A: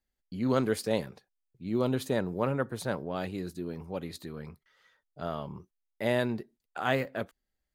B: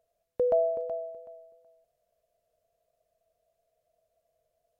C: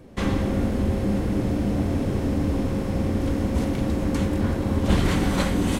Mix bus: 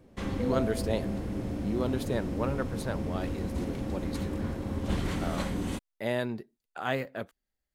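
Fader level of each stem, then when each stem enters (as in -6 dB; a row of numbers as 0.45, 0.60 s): -2.5, -9.5, -10.0 dB; 0.00, 0.00, 0.00 s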